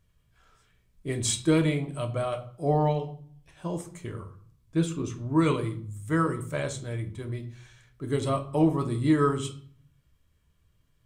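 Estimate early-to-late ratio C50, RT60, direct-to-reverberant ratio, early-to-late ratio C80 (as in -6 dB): 13.0 dB, 0.55 s, 4.5 dB, 17.5 dB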